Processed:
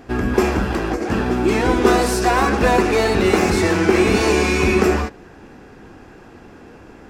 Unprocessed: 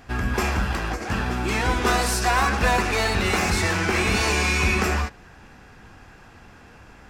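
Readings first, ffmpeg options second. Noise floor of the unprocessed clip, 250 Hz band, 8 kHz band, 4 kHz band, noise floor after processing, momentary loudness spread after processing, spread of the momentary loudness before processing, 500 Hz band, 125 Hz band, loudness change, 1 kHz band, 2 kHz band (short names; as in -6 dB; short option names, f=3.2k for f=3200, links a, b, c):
-48 dBFS, +10.0 dB, 0.0 dB, 0.0 dB, -43 dBFS, 6 LU, 6 LU, +11.0 dB, +2.0 dB, +5.0 dB, +3.5 dB, +1.0 dB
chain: -af "equalizer=f=350:t=o:w=1.7:g=13"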